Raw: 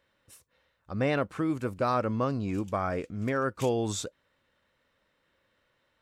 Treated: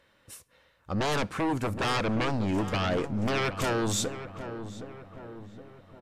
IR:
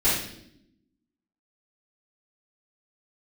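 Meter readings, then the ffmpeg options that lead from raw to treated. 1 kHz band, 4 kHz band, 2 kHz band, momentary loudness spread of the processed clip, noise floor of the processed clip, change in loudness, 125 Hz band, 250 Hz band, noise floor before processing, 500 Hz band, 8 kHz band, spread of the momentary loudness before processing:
+1.0 dB, +9.0 dB, +5.0 dB, 18 LU, -66 dBFS, +1.0 dB, +2.0 dB, +1.5 dB, -74 dBFS, -0.5 dB, +6.0 dB, 5 LU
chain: -filter_complex "[0:a]aeval=exprs='0.178*sin(PI/2*4.47*val(0)/0.178)':c=same,asplit=2[a][b];[b]adelay=768,lowpass=f=1.5k:p=1,volume=-10dB,asplit=2[c][d];[d]adelay=768,lowpass=f=1.5k:p=1,volume=0.54,asplit=2[e][f];[f]adelay=768,lowpass=f=1.5k:p=1,volume=0.54,asplit=2[g][h];[h]adelay=768,lowpass=f=1.5k:p=1,volume=0.54,asplit=2[i][j];[j]adelay=768,lowpass=f=1.5k:p=1,volume=0.54,asplit=2[k][l];[l]adelay=768,lowpass=f=1.5k:p=1,volume=0.54[m];[a][c][e][g][i][k][m]amix=inputs=7:normalize=0,asplit=2[n][o];[1:a]atrim=start_sample=2205[p];[o][p]afir=irnorm=-1:irlink=0,volume=-37dB[q];[n][q]amix=inputs=2:normalize=0,volume=-9dB" -ar 32000 -c:a libmp3lame -b:a 96k

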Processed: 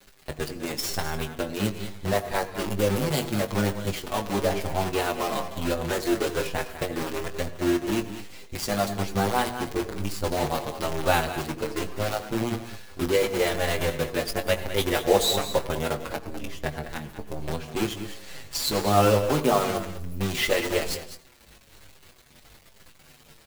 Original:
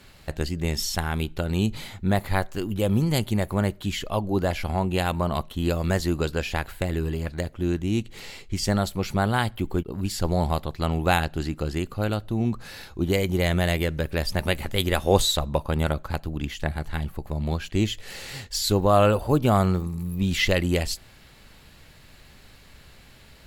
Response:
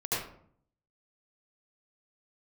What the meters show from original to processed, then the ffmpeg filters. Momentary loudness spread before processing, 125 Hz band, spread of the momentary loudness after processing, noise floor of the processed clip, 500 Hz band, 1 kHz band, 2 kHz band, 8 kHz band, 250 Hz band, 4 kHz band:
9 LU, -7.0 dB, 12 LU, -54 dBFS, +1.0 dB, +0.5 dB, -0.5 dB, +1.0 dB, -3.0 dB, -1.0 dB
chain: -filter_complex "[0:a]equalizer=f=440:w=0.88:g=4.5,bandreject=f=60:t=h:w=6,bandreject=f=120:t=h:w=6,bandreject=f=180:t=h:w=6,bandreject=f=240:t=h:w=6,bandreject=f=300:t=h:w=6,bandreject=f=360:t=h:w=6,bandreject=f=420:t=h:w=6,acrossover=split=290|3000[a][b][c];[a]acompressor=threshold=-28dB:ratio=3[d];[d][b][c]amix=inputs=3:normalize=0,acrusher=bits=5:dc=4:mix=0:aa=0.000001,asplit=2[e][f];[f]adelay=20,volume=-9dB[g];[e][g]amix=inputs=2:normalize=0,aecho=1:1:203:0.266,asplit=2[h][i];[1:a]atrim=start_sample=2205,adelay=9[j];[i][j]afir=irnorm=-1:irlink=0,volume=-22dB[k];[h][k]amix=inputs=2:normalize=0,asplit=2[l][m];[m]adelay=7.1,afreqshift=-1.1[n];[l][n]amix=inputs=2:normalize=1"

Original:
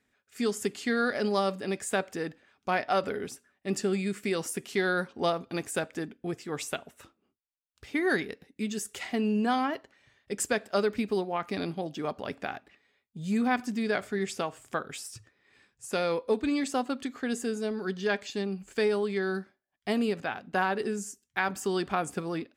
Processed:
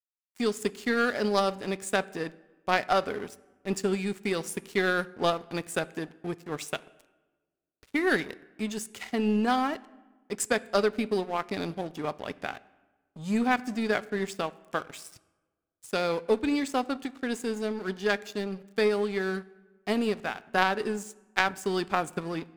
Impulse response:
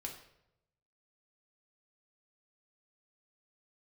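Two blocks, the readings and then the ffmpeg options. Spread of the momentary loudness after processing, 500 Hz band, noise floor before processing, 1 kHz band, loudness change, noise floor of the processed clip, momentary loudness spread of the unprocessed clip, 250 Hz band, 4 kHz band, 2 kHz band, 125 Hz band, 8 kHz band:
11 LU, +1.0 dB, -80 dBFS, +2.0 dB, +1.5 dB, -81 dBFS, 10 LU, +0.5 dB, +2.5 dB, +2.0 dB, 0.0 dB, -1.0 dB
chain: -filter_complex "[0:a]aeval=exprs='sgn(val(0))*max(abs(val(0))-0.00631,0)':c=same,asplit=2[a][b];[1:a]atrim=start_sample=2205,asetrate=25578,aresample=44100[c];[b][c]afir=irnorm=-1:irlink=0,volume=-15dB[d];[a][d]amix=inputs=2:normalize=0,aeval=exprs='0.266*(cos(1*acos(clip(val(0)/0.266,-1,1)))-cos(1*PI/2))+0.0531*(cos(2*acos(clip(val(0)/0.266,-1,1)))-cos(2*PI/2))+0.0376*(cos(3*acos(clip(val(0)/0.266,-1,1)))-cos(3*PI/2))+0.0106*(cos(4*acos(clip(val(0)/0.266,-1,1)))-cos(4*PI/2))':c=same,volume=5dB"

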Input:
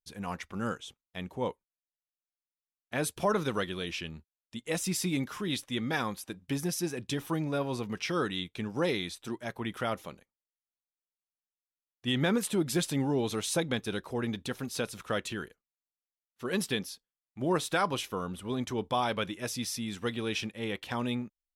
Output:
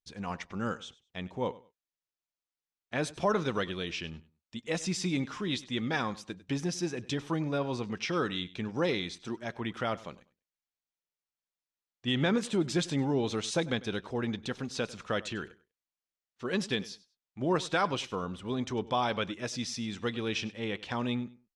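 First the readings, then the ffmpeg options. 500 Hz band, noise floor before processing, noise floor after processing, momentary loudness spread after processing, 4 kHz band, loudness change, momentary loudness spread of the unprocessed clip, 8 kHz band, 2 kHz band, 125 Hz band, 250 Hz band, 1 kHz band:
0.0 dB, under -85 dBFS, under -85 dBFS, 10 LU, 0.0 dB, 0.0 dB, 9 LU, -4.0 dB, 0.0 dB, 0.0 dB, 0.0 dB, 0.0 dB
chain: -filter_complex "[0:a]lowpass=f=7.1k:w=0.5412,lowpass=f=7.1k:w=1.3066,asplit=2[a][b];[b]aecho=0:1:98|196:0.106|0.0244[c];[a][c]amix=inputs=2:normalize=0"

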